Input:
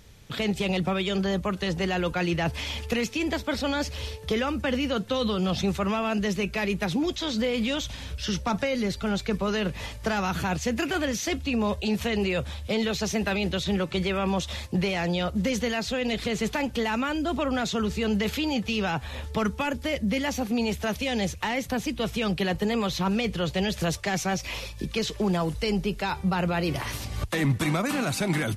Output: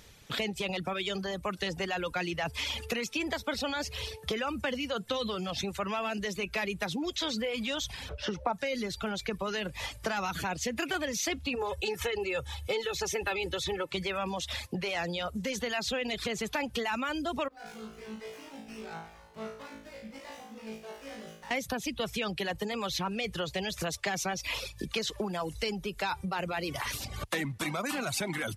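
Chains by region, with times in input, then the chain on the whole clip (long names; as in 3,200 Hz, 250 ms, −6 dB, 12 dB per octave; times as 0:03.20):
0:08.09–0:08.53: low-pass filter 1,900 Hz 6 dB per octave + parametric band 620 Hz +10.5 dB 1.8 octaves
0:11.55–0:13.89: parametric band 4,600 Hz −3.5 dB 0.9 octaves + comb filter 2.3 ms, depth 79%
0:17.48–0:21.51: tuned comb filter 55 Hz, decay 1.3 s, mix 100% + windowed peak hold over 9 samples
whole clip: downward compressor, threshold −28 dBFS; reverb reduction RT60 0.75 s; low-shelf EQ 300 Hz −8.5 dB; level +2 dB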